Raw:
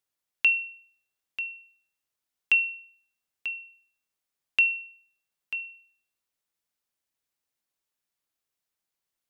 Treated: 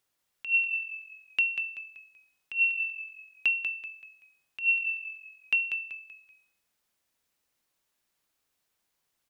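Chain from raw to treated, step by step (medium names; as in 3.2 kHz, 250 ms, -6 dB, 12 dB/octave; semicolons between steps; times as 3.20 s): treble shelf 4.2 kHz -2.5 dB; compressor with a negative ratio -28 dBFS, ratio -0.5; frequency-shifting echo 191 ms, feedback 35%, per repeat -44 Hz, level -7 dB; trim +4 dB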